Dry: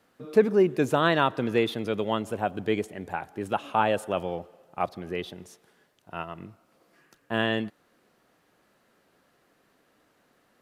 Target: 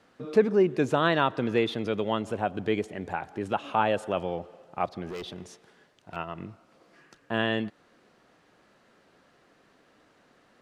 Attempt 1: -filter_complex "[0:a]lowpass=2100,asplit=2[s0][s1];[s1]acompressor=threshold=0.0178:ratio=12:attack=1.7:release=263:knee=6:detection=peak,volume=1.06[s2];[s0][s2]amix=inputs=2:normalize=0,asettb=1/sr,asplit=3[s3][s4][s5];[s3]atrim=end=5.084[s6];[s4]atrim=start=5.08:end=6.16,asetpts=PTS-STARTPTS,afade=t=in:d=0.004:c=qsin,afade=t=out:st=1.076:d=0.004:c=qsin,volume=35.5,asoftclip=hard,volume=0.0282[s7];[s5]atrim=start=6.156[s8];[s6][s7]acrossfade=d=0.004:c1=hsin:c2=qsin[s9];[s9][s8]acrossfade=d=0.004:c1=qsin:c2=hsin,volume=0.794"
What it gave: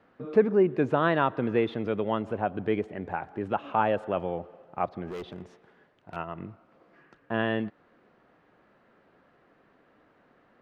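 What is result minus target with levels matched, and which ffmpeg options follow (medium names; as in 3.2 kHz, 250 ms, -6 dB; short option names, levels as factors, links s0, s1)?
8 kHz band -16.5 dB
-filter_complex "[0:a]lowpass=6900,asplit=2[s0][s1];[s1]acompressor=threshold=0.0178:ratio=12:attack=1.7:release=263:knee=6:detection=peak,volume=1.06[s2];[s0][s2]amix=inputs=2:normalize=0,asettb=1/sr,asplit=3[s3][s4][s5];[s3]atrim=end=5.084[s6];[s4]atrim=start=5.08:end=6.16,asetpts=PTS-STARTPTS,afade=t=in:d=0.004:c=qsin,afade=t=out:st=1.076:d=0.004:c=qsin,volume=35.5,asoftclip=hard,volume=0.0282[s7];[s5]atrim=start=6.156[s8];[s6][s7]acrossfade=d=0.004:c1=hsin:c2=qsin[s9];[s9][s8]acrossfade=d=0.004:c1=qsin:c2=hsin,volume=0.794"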